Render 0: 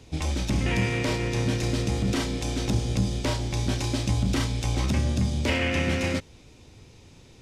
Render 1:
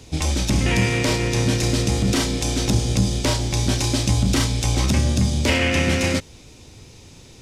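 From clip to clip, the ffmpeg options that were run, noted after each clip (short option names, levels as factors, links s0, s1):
-af "bass=f=250:g=0,treble=f=4000:g=6,volume=1.88"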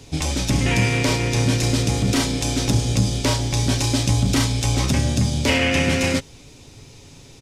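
-af "aecho=1:1:7.2:0.34"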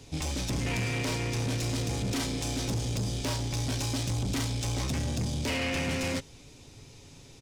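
-af "asoftclip=type=tanh:threshold=0.1,volume=0.473"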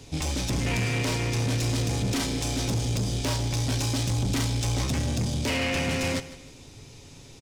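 -af "aecho=1:1:154|308|462:0.158|0.0555|0.0194,volume=1.5"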